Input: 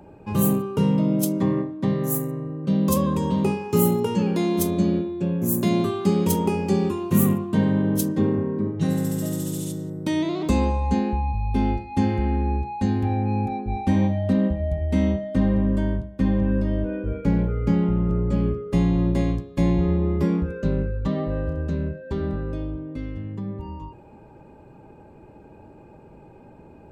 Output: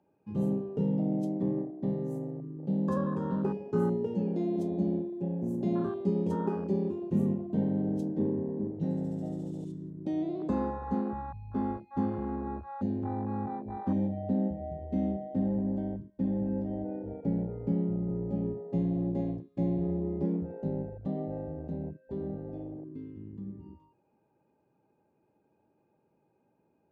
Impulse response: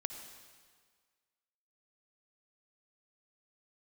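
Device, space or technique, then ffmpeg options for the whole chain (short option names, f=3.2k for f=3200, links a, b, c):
over-cleaned archive recording: -af "highpass=140,lowpass=5.6k,afwtdn=0.0562,volume=-7.5dB"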